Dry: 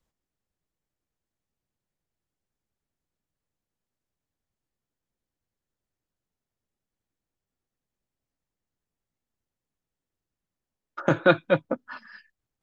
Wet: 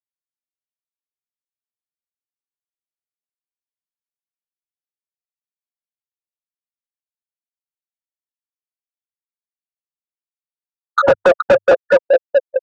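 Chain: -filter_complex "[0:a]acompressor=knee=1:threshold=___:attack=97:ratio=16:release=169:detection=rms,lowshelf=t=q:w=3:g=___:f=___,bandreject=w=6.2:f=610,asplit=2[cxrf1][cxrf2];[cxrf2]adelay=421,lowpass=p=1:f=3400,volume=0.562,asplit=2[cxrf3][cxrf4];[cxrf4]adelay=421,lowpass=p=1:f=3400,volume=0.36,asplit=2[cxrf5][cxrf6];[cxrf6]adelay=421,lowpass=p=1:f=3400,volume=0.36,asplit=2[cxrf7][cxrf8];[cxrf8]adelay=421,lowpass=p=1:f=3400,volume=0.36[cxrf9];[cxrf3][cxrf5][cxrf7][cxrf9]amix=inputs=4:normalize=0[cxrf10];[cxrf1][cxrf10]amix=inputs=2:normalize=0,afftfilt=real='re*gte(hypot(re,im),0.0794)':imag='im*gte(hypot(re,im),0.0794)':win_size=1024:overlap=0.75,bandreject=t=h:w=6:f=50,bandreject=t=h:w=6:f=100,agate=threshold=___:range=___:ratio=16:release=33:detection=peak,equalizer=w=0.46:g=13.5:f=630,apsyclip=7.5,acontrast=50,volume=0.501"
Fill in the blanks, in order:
0.0398, -9, 420, 0.002, 0.0316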